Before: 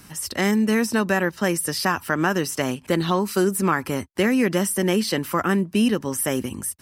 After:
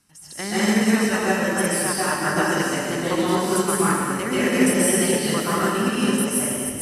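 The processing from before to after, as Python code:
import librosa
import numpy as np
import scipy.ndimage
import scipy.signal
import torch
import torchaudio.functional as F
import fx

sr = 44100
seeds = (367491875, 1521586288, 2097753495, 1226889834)

y = scipy.signal.sosfilt(scipy.signal.butter(4, 11000.0, 'lowpass', fs=sr, output='sos'), x)
y = fx.high_shelf(y, sr, hz=5900.0, db=8.0)
y = fx.hum_notches(y, sr, base_hz=60, count=9)
y = fx.level_steps(y, sr, step_db=11)
y = fx.rev_plate(y, sr, seeds[0], rt60_s=2.6, hf_ratio=0.95, predelay_ms=115, drr_db=-9.0)
y = fx.upward_expand(y, sr, threshold_db=-27.0, expansion=1.5)
y = F.gain(torch.from_numpy(y), -2.5).numpy()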